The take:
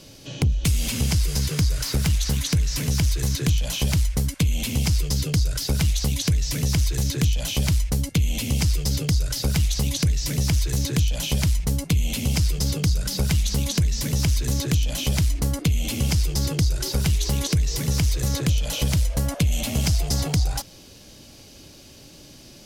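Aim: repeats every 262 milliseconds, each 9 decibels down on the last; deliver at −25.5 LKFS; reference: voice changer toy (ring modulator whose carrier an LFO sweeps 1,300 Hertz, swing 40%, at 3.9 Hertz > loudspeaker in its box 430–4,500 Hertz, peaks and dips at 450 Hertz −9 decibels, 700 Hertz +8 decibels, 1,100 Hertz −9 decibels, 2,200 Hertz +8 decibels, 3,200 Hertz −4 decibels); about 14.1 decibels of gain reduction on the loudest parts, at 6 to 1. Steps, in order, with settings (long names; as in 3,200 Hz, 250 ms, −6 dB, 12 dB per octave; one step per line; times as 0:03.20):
downward compressor 6 to 1, threshold −33 dBFS
repeating echo 262 ms, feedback 35%, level −9 dB
ring modulator whose carrier an LFO sweeps 1,300 Hz, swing 40%, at 3.9 Hz
loudspeaker in its box 430–4,500 Hz, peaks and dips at 450 Hz −9 dB, 700 Hz +8 dB, 1,100 Hz −9 dB, 2,200 Hz +8 dB, 3,200 Hz −4 dB
level +10 dB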